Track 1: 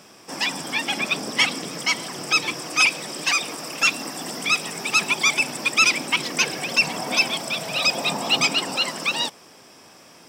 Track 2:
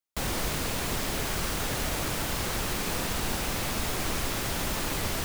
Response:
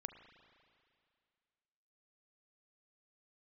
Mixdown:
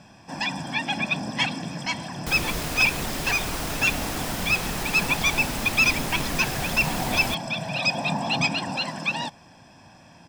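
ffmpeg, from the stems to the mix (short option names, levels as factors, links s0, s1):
-filter_complex "[0:a]aemphasis=mode=reproduction:type=bsi,aecho=1:1:1.2:0.69,volume=0.668[s0];[1:a]adelay=2100,volume=1[s1];[s0][s1]amix=inputs=2:normalize=0"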